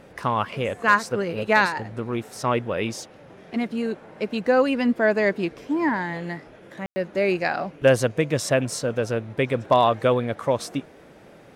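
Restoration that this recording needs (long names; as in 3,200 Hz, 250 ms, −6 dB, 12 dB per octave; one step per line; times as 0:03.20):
clipped peaks rebuilt −7 dBFS
ambience match 0:06.86–0:06.96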